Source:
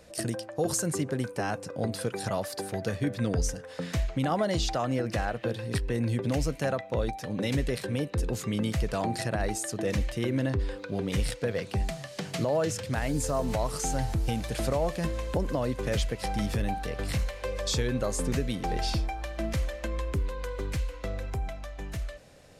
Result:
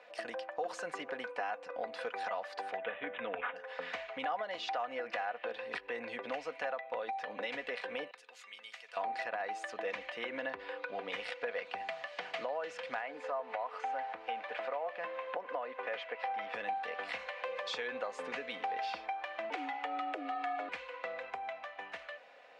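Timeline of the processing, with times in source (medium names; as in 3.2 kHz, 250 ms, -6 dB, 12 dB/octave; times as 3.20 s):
2.77–3.56 s: careless resampling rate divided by 6×, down none, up filtered
8.11–8.97 s: differentiator
13.01–16.54 s: tone controls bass -10 dB, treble -15 dB
19.50–20.69 s: frequency shift +230 Hz
whole clip: Chebyshev band-pass 710–2600 Hz, order 2; compression 3:1, threshold -39 dBFS; comb 4.1 ms, depth 42%; trim +2.5 dB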